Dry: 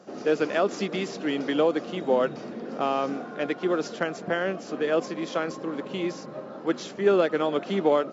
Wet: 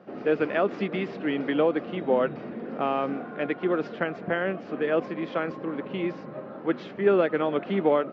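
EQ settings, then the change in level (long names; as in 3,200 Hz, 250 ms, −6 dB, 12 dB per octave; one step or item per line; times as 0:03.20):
high-frequency loss of the air 370 metres
low-shelf EQ 100 Hz +7.5 dB
parametric band 2,200 Hz +5 dB 1.1 octaves
0.0 dB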